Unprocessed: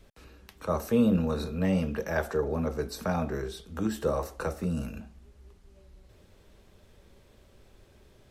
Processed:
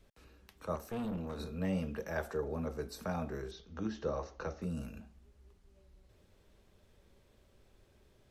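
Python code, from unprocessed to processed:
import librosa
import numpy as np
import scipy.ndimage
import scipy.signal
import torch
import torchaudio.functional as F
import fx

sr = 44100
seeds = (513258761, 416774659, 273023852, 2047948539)

y = fx.tube_stage(x, sr, drive_db=26.0, bias=0.65, at=(0.75, 1.39))
y = fx.steep_lowpass(y, sr, hz=6600.0, slope=96, at=(3.51, 4.62))
y = F.gain(torch.from_numpy(y), -8.0).numpy()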